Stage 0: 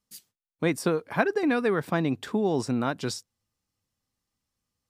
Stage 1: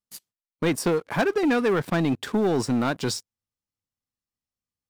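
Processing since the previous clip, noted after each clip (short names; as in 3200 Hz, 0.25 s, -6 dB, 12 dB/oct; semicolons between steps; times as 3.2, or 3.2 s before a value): sample leveller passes 3; gain -6 dB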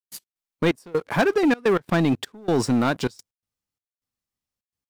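step gate ".x.xxx..xxxxx" 127 bpm -24 dB; gain +3 dB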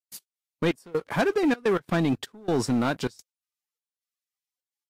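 gain -3.5 dB; Vorbis 48 kbps 48000 Hz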